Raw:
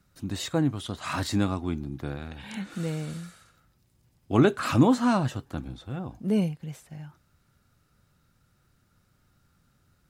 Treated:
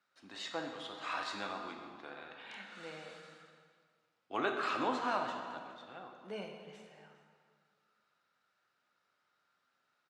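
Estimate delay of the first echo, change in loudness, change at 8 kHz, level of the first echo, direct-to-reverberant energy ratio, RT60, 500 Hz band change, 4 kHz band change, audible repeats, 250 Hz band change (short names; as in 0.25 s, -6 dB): 0.411 s, -12.0 dB, -16.0 dB, -20.0 dB, 2.5 dB, 1.9 s, -11.0 dB, -7.0 dB, 1, -20.0 dB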